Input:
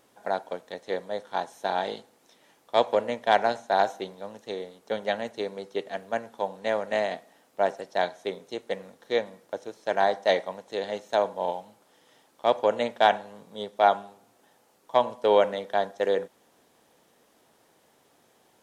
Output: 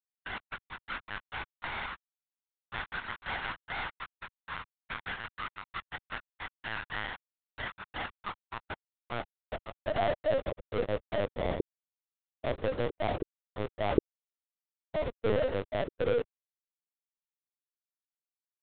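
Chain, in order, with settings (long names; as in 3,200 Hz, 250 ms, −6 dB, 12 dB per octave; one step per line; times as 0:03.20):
comparator with hysteresis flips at −29.5 dBFS
high-pass filter sweep 1,300 Hz → 390 Hz, 0:07.58–0:11.40
linear-prediction vocoder at 8 kHz pitch kept
level −3 dB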